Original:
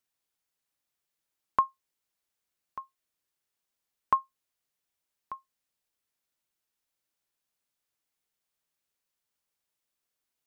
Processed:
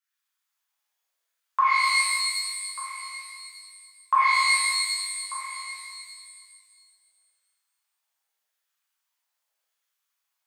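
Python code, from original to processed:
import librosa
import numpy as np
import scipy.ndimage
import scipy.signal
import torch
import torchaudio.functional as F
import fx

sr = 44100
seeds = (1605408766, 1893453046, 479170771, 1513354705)

y = fx.filter_lfo_highpass(x, sr, shape='saw_down', hz=0.83, low_hz=550.0, high_hz=1600.0, q=2.0)
y = fx.rev_shimmer(y, sr, seeds[0], rt60_s=1.8, semitones=12, shimmer_db=-2, drr_db=-9.0)
y = y * 10.0 ** (-7.0 / 20.0)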